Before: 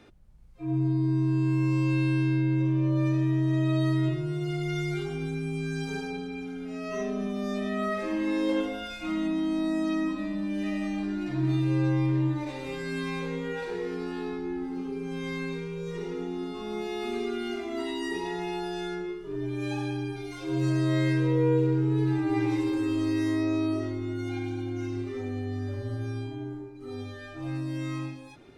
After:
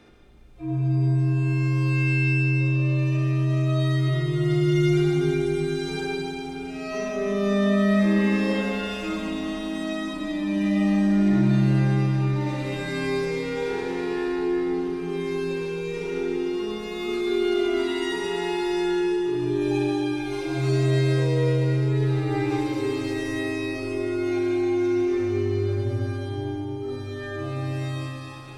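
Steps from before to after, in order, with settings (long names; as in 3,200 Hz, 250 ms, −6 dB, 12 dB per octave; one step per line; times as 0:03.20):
four-comb reverb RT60 3.6 s, combs from 31 ms, DRR −3 dB
level +1.5 dB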